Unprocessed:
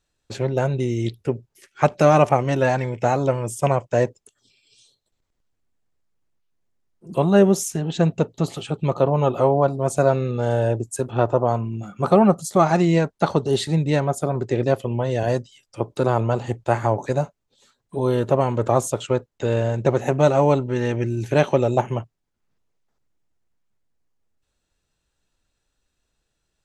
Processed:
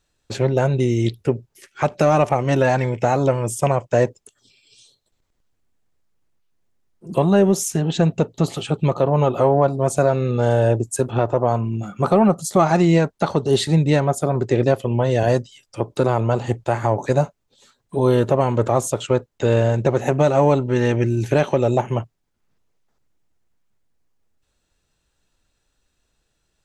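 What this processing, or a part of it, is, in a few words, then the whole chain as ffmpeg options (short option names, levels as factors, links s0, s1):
soft clipper into limiter: -af "asoftclip=type=tanh:threshold=0.708,alimiter=limit=0.282:level=0:latency=1:release=231,volume=1.68"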